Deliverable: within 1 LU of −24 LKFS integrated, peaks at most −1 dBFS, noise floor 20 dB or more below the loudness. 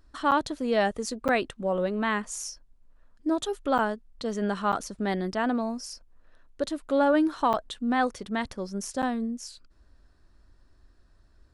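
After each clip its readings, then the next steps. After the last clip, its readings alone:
number of dropouts 6; longest dropout 8.0 ms; integrated loudness −28.0 LKFS; sample peak −11.5 dBFS; target loudness −24.0 LKFS
→ repair the gap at 0:00.31/0:01.28/0:03.78/0:04.72/0:07.53/0:09.02, 8 ms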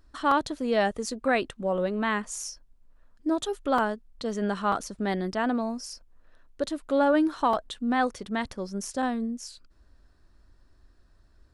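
number of dropouts 0; integrated loudness −28.0 LKFS; sample peak −11.5 dBFS; target loudness −24.0 LKFS
→ level +4 dB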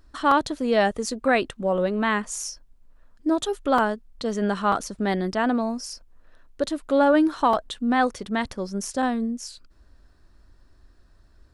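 integrated loudness −24.0 LKFS; sample peak −7.5 dBFS; background noise floor −56 dBFS

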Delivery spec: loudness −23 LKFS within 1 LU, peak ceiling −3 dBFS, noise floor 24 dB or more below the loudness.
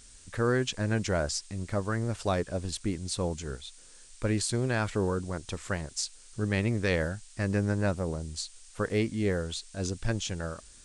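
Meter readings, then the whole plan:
background noise floor −53 dBFS; target noise floor −55 dBFS; integrated loudness −31.0 LKFS; sample peak −13.0 dBFS; target loudness −23.0 LKFS
→ noise reduction from a noise print 6 dB
level +8 dB

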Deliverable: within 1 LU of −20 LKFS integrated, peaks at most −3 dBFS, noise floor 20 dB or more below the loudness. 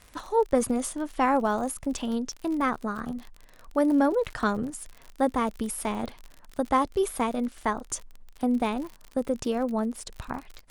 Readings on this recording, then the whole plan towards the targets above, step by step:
crackle rate 52 per second; integrated loudness −28.0 LKFS; sample peak −9.5 dBFS; target loudness −20.0 LKFS
→ click removal
level +8 dB
brickwall limiter −3 dBFS

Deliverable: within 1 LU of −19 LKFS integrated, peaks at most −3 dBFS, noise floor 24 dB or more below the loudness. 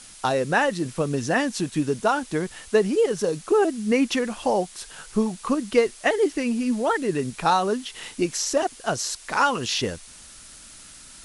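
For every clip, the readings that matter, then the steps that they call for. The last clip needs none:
background noise floor −46 dBFS; target noise floor −48 dBFS; integrated loudness −24.0 LKFS; sample peak −6.5 dBFS; target loudness −19.0 LKFS
→ broadband denoise 6 dB, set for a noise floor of −46 dBFS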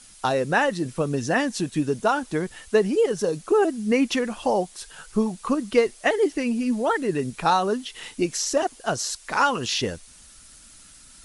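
background noise floor −49 dBFS; integrated loudness −24.0 LKFS; sample peak −6.5 dBFS; target loudness −19.0 LKFS
→ level +5 dB
brickwall limiter −3 dBFS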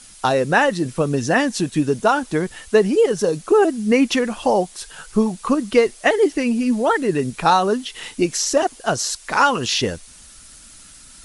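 integrated loudness −19.0 LKFS; sample peak −3.0 dBFS; background noise floor −44 dBFS

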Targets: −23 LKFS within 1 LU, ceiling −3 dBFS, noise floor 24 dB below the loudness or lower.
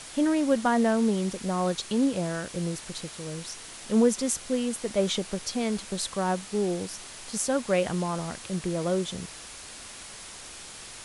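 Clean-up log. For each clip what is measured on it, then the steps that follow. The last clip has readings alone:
background noise floor −44 dBFS; target noise floor −52 dBFS; integrated loudness −28.0 LKFS; sample peak −11.0 dBFS; target loudness −23.0 LKFS
→ broadband denoise 8 dB, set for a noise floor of −44 dBFS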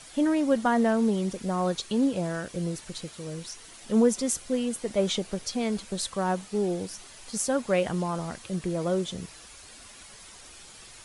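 background noise floor −48 dBFS; target noise floor −52 dBFS
→ broadband denoise 6 dB, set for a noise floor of −48 dBFS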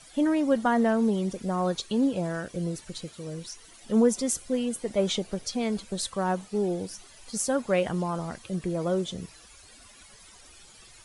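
background noise floor −52 dBFS; integrated loudness −28.0 LKFS; sample peak −11.0 dBFS; target loudness −23.0 LKFS
→ level +5 dB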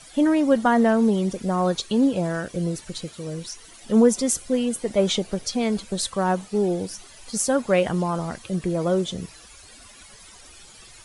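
integrated loudness −23.0 LKFS; sample peak −6.0 dBFS; background noise floor −47 dBFS

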